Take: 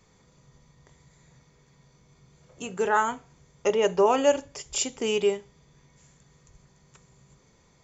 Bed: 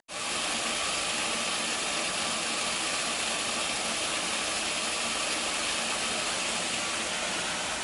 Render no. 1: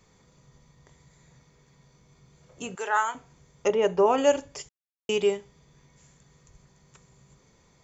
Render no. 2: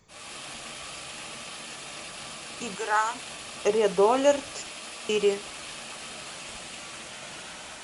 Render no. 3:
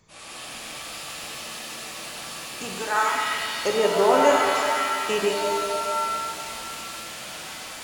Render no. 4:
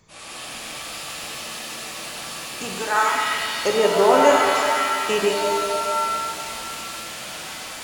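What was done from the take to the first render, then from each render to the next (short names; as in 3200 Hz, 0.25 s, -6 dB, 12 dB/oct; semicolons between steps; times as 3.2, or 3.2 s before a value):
2.75–3.15 HPF 720 Hz; 3.68–4.18 high shelf 3400 Hz -9.5 dB; 4.69–5.09 mute
add bed -10 dB
shimmer reverb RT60 2.2 s, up +7 st, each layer -2 dB, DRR 1 dB
gain +3 dB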